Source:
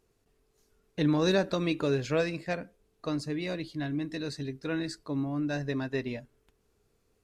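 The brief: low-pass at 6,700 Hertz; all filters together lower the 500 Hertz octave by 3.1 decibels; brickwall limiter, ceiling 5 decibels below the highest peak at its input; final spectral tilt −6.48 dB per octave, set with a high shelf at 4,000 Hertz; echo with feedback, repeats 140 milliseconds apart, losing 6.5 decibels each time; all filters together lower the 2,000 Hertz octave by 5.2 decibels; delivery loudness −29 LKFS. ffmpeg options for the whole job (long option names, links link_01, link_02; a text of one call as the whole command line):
ffmpeg -i in.wav -af "lowpass=6700,equalizer=frequency=500:width_type=o:gain=-3.5,equalizer=frequency=2000:width_type=o:gain=-5,highshelf=frequency=4000:gain=-7.5,alimiter=limit=-23.5dB:level=0:latency=1,aecho=1:1:140|280|420|560|700|840:0.473|0.222|0.105|0.0491|0.0231|0.0109,volume=5dB" out.wav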